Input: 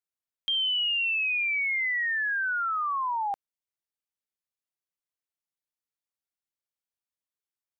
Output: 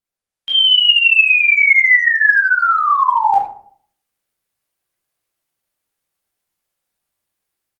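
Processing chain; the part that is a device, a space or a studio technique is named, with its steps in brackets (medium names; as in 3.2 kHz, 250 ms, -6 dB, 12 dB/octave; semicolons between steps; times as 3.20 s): speakerphone in a meeting room (reverberation RT60 0.60 s, pre-delay 13 ms, DRR -6 dB; speakerphone echo 80 ms, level -23 dB; level rider gain up to 12 dB; Opus 32 kbps 48 kHz)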